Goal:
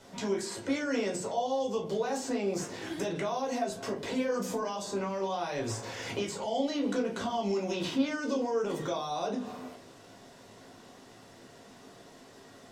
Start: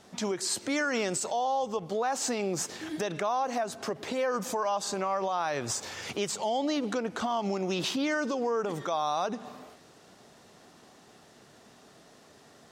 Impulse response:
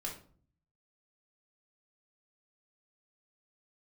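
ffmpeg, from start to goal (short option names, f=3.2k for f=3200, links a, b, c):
-filter_complex "[0:a]acrossover=split=590|2200[a][b][c];[a]acompressor=threshold=-33dB:ratio=4[d];[b]acompressor=threshold=-44dB:ratio=4[e];[c]acompressor=threshold=-43dB:ratio=4[f];[d][e][f]amix=inputs=3:normalize=0[g];[1:a]atrim=start_sample=2205,asetrate=70560,aresample=44100[h];[g][h]afir=irnorm=-1:irlink=0,volume=6.5dB"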